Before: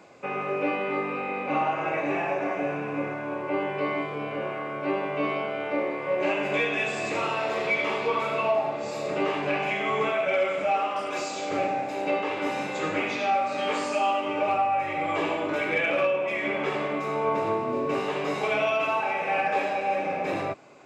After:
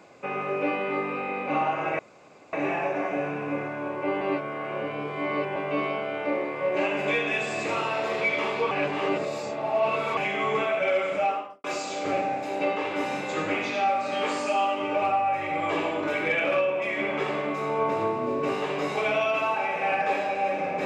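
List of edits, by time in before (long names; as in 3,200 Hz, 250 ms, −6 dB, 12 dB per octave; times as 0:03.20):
0:01.99: splice in room tone 0.54 s
0:03.67–0:05.02: reverse
0:08.17–0:09.63: reverse
0:10.68–0:11.10: fade out and dull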